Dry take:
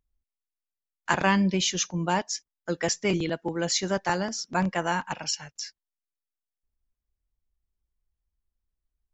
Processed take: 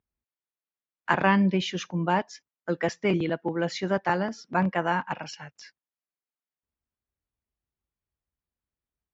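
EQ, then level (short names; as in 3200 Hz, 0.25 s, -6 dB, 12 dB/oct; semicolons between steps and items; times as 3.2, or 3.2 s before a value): BPF 100–2500 Hz; +1.5 dB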